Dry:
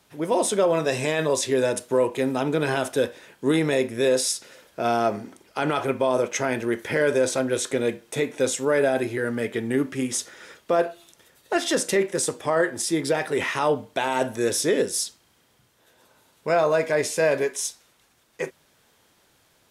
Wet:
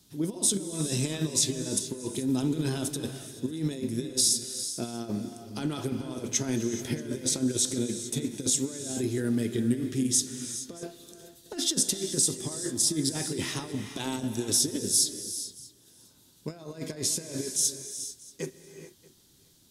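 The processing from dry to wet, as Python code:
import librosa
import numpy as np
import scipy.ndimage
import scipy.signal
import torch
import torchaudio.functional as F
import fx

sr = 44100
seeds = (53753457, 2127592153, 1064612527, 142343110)

y = fx.over_compress(x, sr, threshold_db=-25.0, ratio=-0.5)
y = fx.band_shelf(y, sr, hz=1100.0, db=-15.5, octaves=2.9)
y = y + 10.0 ** (-23.5 / 20.0) * np.pad(y, (int(631 * sr / 1000.0), 0))[:len(y)]
y = fx.rev_gated(y, sr, seeds[0], gate_ms=460, shape='rising', drr_db=8.5)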